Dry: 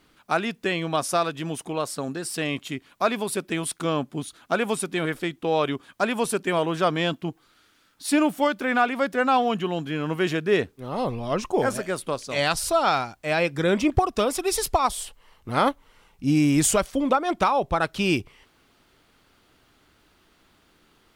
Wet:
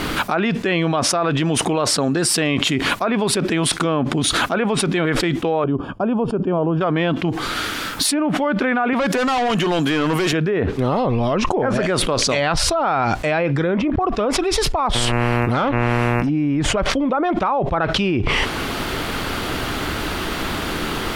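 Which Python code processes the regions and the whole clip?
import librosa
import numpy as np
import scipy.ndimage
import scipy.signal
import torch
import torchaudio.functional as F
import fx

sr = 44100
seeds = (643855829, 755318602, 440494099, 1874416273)

y = fx.chain(x, sr, fx.moving_average(points=22),
    fx.low_shelf(hz=200.0, db=7.0),
    fx.upward_expand(threshold_db=-41.0, expansion=1.5), at=(5.64, 6.81))
y = fx.chain(y, sr, fx.highpass(hz=260.0, slope=6),
    fx.high_shelf(hz=6600.0, db=10.0),
    fx.overload_stage(gain_db=28.0), at=(8.93, 10.33))
y = fx.dmg_buzz(y, sr, base_hz=120.0, harmonics=23, level_db=-45.0, tilt_db=-4, odd_only=False, at=(14.94, 16.28), fade=0.02)
y = fx.overload_stage(y, sr, gain_db=19.0, at=(14.94, 16.28), fade=0.02)
y = fx.peak_eq(y, sr, hz=7600.0, db=-4.5, octaves=2.0)
y = fx.env_lowpass_down(y, sr, base_hz=1900.0, full_db=-18.0)
y = fx.env_flatten(y, sr, amount_pct=100)
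y = F.gain(torch.from_numpy(y), -2.5).numpy()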